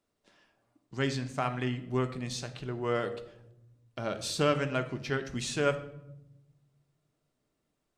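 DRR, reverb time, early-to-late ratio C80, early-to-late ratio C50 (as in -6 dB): 7.0 dB, 0.85 s, 15.5 dB, 12.5 dB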